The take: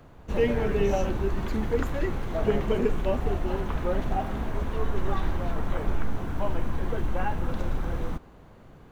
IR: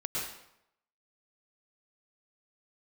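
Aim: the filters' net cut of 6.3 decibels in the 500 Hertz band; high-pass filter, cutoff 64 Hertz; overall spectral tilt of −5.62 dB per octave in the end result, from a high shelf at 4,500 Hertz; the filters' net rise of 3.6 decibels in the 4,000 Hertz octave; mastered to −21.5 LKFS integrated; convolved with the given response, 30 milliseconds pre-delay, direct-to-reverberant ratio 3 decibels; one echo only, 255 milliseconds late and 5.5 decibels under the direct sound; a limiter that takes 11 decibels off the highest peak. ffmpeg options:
-filter_complex "[0:a]highpass=64,equalizer=frequency=500:width_type=o:gain=-8,equalizer=frequency=4000:width_type=o:gain=3.5,highshelf=frequency=4500:gain=3.5,alimiter=level_in=3dB:limit=-24dB:level=0:latency=1,volume=-3dB,aecho=1:1:255:0.531,asplit=2[link_01][link_02];[1:a]atrim=start_sample=2205,adelay=30[link_03];[link_02][link_03]afir=irnorm=-1:irlink=0,volume=-7.5dB[link_04];[link_01][link_04]amix=inputs=2:normalize=0,volume=12dB"

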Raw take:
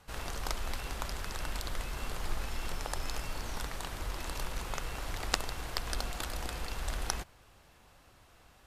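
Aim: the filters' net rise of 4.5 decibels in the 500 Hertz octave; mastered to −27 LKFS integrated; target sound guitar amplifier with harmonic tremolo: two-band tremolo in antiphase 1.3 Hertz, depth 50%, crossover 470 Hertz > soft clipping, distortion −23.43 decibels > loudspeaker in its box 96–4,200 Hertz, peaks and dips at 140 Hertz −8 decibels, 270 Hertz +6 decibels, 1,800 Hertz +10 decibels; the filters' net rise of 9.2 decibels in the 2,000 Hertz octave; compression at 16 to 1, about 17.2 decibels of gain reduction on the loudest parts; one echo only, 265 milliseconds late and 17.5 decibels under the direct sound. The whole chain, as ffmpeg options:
ffmpeg -i in.wav -filter_complex "[0:a]equalizer=frequency=500:width_type=o:gain=5,equalizer=frequency=2000:width_type=o:gain=4,acompressor=threshold=-40dB:ratio=16,aecho=1:1:265:0.133,acrossover=split=470[link_01][link_02];[link_01]aeval=exprs='val(0)*(1-0.5/2+0.5/2*cos(2*PI*1.3*n/s))':channel_layout=same[link_03];[link_02]aeval=exprs='val(0)*(1-0.5/2-0.5/2*cos(2*PI*1.3*n/s))':channel_layout=same[link_04];[link_03][link_04]amix=inputs=2:normalize=0,asoftclip=threshold=-32.5dB,highpass=96,equalizer=frequency=140:width_type=q:width=4:gain=-8,equalizer=frequency=270:width_type=q:width=4:gain=6,equalizer=frequency=1800:width_type=q:width=4:gain=10,lowpass=frequency=4200:width=0.5412,lowpass=frequency=4200:width=1.3066,volume=21.5dB" out.wav

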